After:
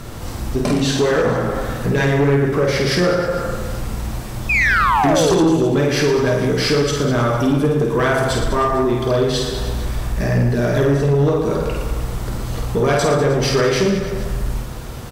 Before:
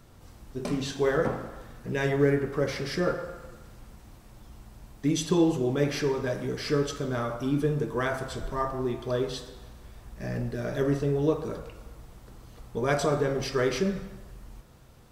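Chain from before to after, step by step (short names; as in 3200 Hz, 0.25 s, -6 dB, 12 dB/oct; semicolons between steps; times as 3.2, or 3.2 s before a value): compressor 2.5:1, threshold -41 dBFS, peak gain reduction 15.5 dB; painted sound fall, 4.49–5.45, 290–2600 Hz -37 dBFS; on a send: reverse bouncing-ball echo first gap 50 ms, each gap 1.3×, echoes 5; on the sum: sine folder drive 13 dB, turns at -14.5 dBFS; gain +4.5 dB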